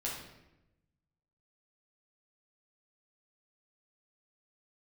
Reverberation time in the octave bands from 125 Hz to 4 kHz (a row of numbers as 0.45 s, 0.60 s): 1.6 s, 1.2 s, 1.0 s, 0.85 s, 0.85 s, 0.70 s